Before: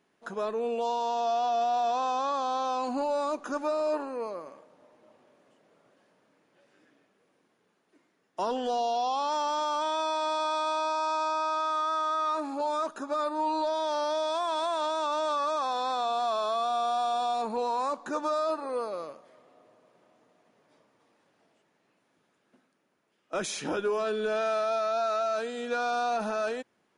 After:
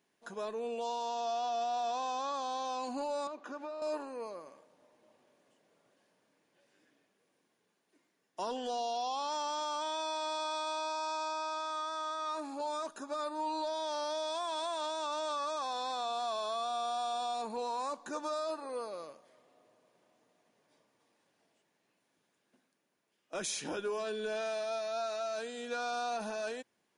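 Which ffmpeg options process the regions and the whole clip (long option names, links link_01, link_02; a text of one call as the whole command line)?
ffmpeg -i in.wav -filter_complex "[0:a]asettb=1/sr,asplit=3[link_01][link_02][link_03];[link_01]atrim=end=3.274[link_04];[link_02]atrim=start=3.27:end=3.82,asetpts=PTS-STARTPTS,afade=type=in:duration=0.004:curve=qsin,afade=type=out:start_time=0.546:duration=0.004:curve=qsin,acrossover=split=180 4100:gain=0.0794 1 0.141[link_05][link_06][link_07];[link_05][link_06][link_07]amix=inputs=3:normalize=0,acompressor=threshold=-31dB:ratio=6:attack=3.2:release=140:knee=1:detection=peak[link_08];[link_03]atrim=start=3.816[link_09];[link_04][link_08]acrossfade=duration=0.004:curve1=hsin:curve2=qsin[link_10];[link_10][link_09]acrossfade=duration=0.004:curve1=qsin:curve2=hsin,highshelf=frequency=3400:gain=8.5,bandreject=frequency=1300:width=12,volume=-7.5dB" out.wav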